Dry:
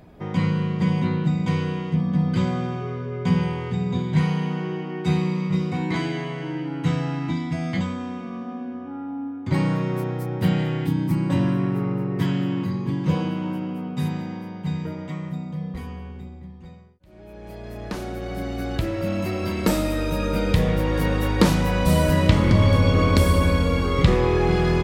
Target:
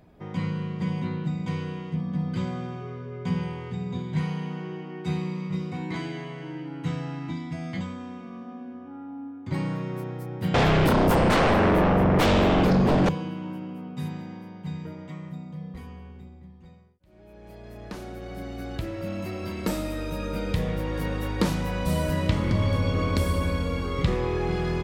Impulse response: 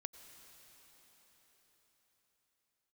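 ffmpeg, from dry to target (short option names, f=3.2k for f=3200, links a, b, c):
-filter_complex "[0:a]asettb=1/sr,asplit=3[a][b][c];[a]atrim=end=10.544[d];[b]atrim=start=10.54:end=13.09,asetpts=PTS-STARTPTS,afade=t=in:d=0.004:c=qsin,afade=t=out:st=2.546:d=0.004:c=qsin,aeval=exprs='0.335*sin(PI/2*6.31*val(0)/0.335)':c=same[e];[c]atrim=start=13.086[f];[d][e]acrossfade=d=0.004:c1=hsin:c2=qsin[g];[g][f]acrossfade=d=0.004:c1=qsin:c2=hsin,volume=-7dB"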